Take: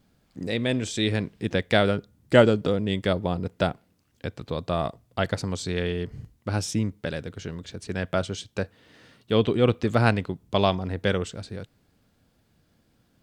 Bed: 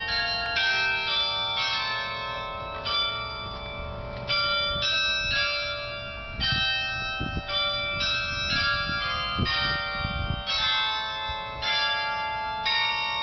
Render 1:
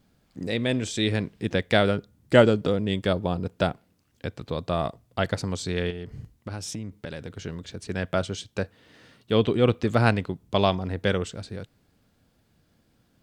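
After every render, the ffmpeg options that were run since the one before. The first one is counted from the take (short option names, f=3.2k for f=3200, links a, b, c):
-filter_complex "[0:a]asettb=1/sr,asplit=3[a][b][c];[a]atrim=end=2.944[d];[b]atrim=start=2.94:end=3.61,asetpts=PTS-STARTPTS,afade=t=in:d=0.004:c=qsin,afade=t=out:st=0.666:d=0.004:c=qsin,bandreject=f=2k:w=10[e];[c]atrim=start=3.606[f];[d][e]acrossfade=d=0.004:c1=hsin:c2=qsin[g];[g][f]acrossfade=d=0.004:c1=qsin:c2=hsin,asettb=1/sr,asplit=3[h][i][j];[h]atrim=end=5.904[k];[i]atrim=start=5.9:end=7.38,asetpts=PTS-STARTPTS,afade=t=in:d=0.004:c=qsin,afade=t=out:st=1.476:d=0.004:c=qsin,acompressor=threshold=-30dB:ratio=6:attack=3.2:release=140:knee=1:detection=peak[l];[j]atrim=start=7.376[m];[k][l]acrossfade=d=0.004:c1=hsin:c2=qsin[n];[n][m]acrossfade=d=0.004:c1=qsin:c2=hsin"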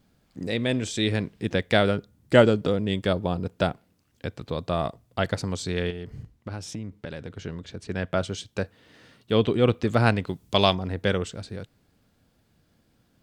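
-filter_complex "[0:a]asettb=1/sr,asplit=3[a][b][c];[a]atrim=end=6.234[d];[b]atrim=start=6.23:end=8.22,asetpts=PTS-STARTPTS,afade=t=in:d=0.004:c=qsin,afade=t=out:st=1.986:d=0.004:c=qsin,highshelf=f=6.3k:g=-9[e];[c]atrim=start=8.216[f];[d][e]acrossfade=d=0.004:c1=hsin:c2=qsin[g];[g][f]acrossfade=d=0.004:c1=qsin:c2=hsin,asplit=3[h][i][j];[h]afade=t=out:st=10.26:d=0.02[k];[i]highshelf=f=2.3k:g=10,afade=t=in:st=10.26:d=0.02,afade=t=out:st=10.72:d=0.02[l];[j]afade=t=in:st=10.72:d=0.02[m];[k][l][m]amix=inputs=3:normalize=0"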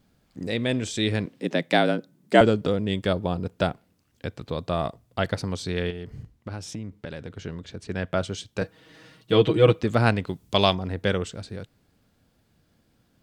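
-filter_complex "[0:a]asettb=1/sr,asplit=3[a][b][c];[a]atrim=end=1.264[d];[b]atrim=start=1.26:end=2.41,asetpts=PTS-STARTPTS,afade=t=in:d=0.004:c=qsin,afade=t=out:st=1.146:d=0.004:c=qsin,afreqshift=73[e];[c]atrim=start=2.406[f];[d][e]acrossfade=d=0.004:c1=hsin:c2=qsin[g];[g][f]acrossfade=d=0.004:c1=qsin:c2=hsin,asettb=1/sr,asplit=3[h][i][j];[h]atrim=end=5.284[k];[i]atrim=start=5.28:end=5.95,asetpts=PTS-STARTPTS,afade=t=in:d=0.004:c=qsin,afade=t=out:st=0.666:d=0.004:c=qsin,equalizer=f=7.3k:t=o:w=0.28:g=-7[l];[j]atrim=start=5.946[m];[k][l]acrossfade=d=0.004:c1=hsin:c2=qsin[n];[n][m]acrossfade=d=0.004:c1=qsin:c2=hsin,asettb=1/sr,asplit=3[o][p][q];[o]atrim=end=8.614[r];[p]atrim=start=8.61:end=9.82,asetpts=PTS-STARTPTS,afade=t=in:d=0.004:c=qsin,afade=t=out:st=1.206:d=0.004:c=qsin,aecho=1:1:6.3:0.98,atrim=end_sample=53361[s];[q]atrim=start=9.816[t];[r][s]acrossfade=d=0.004:c1=hsin:c2=qsin[u];[u][t]acrossfade=d=0.004:c1=qsin:c2=hsin"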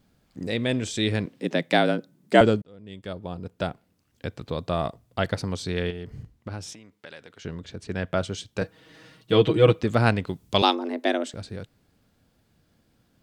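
-filter_complex "[0:a]asettb=1/sr,asplit=3[a][b][c];[a]atrim=end=6.734[d];[b]atrim=start=6.73:end=7.45,asetpts=PTS-STARTPTS,afade=t=in:d=0.004:c=qsin,afade=t=out:st=0.716:d=0.004:c=qsin,highpass=f=1.1k:p=1[e];[c]atrim=start=7.446[f];[d][e]acrossfade=d=0.004:c1=hsin:c2=qsin[g];[g][f]acrossfade=d=0.004:c1=qsin:c2=hsin,asettb=1/sr,asplit=3[h][i][j];[h]atrim=end=10.624[k];[i]atrim=start=10.62:end=11.34,asetpts=PTS-STARTPTS,afade=t=in:d=0.004:c=qsin,afade=t=out:st=0.716:d=0.004:c=qsin,afreqshift=160[l];[j]atrim=start=11.336[m];[k][l]acrossfade=d=0.004:c1=hsin:c2=qsin[n];[n][m]acrossfade=d=0.004:c1=qsin:c2=hsin,asplit=2[o][p];[o]atrim=end=2.62,asetpts=PTS-STARTPTS,afade=t=out:st=2.616:d=0.004:c=hsin[q];[p]atrim=start=2.62,asetpts=PTS-STARTPTS,afade=t=in:d=1.68[r];[q][r]concat=n=2:v=0:a=1"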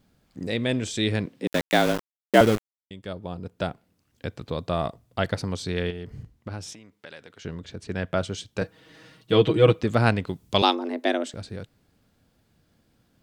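-filter_complex "[0:a]asettb=1/sr,asplit=3[a][b][c];[a]atrim=end=1.474[d];[b]atrim=start=1.47:end=2.91,asetpts=PTS-STARTPTS,afade=t=in:d=0.004:c=qsin,afade=t=out:st=1.436:d=0.004:c=qsin,aeval=exprs='val(0)*gte(abs(val(0)),0.0596)':c=same[e];[c]atrim=start=2.906[f];[d][e]acrossfade=d=0.004:c1=hsin:c2=qsin[g];[g][f]acrossfade=d=0.004:c1=qsin:c2=hsin"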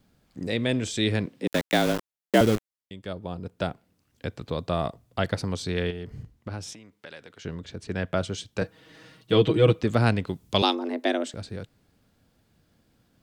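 -filter_complex "[0:a]acrossover=split=430|3000[a][b][c];[b]acompressor=threshold=-25dB:ratio=2[d];[a][d][c]amix=inputs=3:normalize=0"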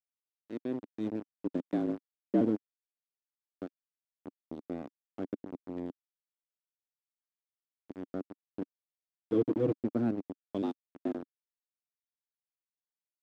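-af "aeval=exprs='val(0)*gte(abs(val(0)),0.1)':c=same,bandpass=f=280:t=q:w=2.8:csg=0"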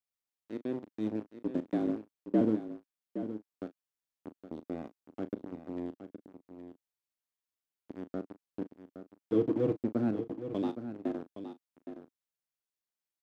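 -filter_complex "[0:a]asplit=2[a][b];[b]adelay=37,volume=-13dB[c];[a][c]amix=inputs=2:normalize=0,aecho=1:1:817:0.299"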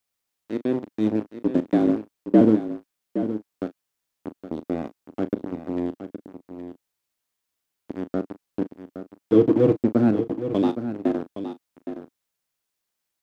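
-af "volume=11.5dB"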